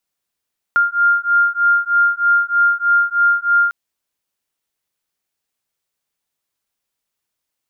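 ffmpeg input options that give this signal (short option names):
-f lavfi -i "aevalsrc='0.178*(sin(2*PI*1400*t)+sin(2*PI*1403.2*t))':d=2.95:s=44100"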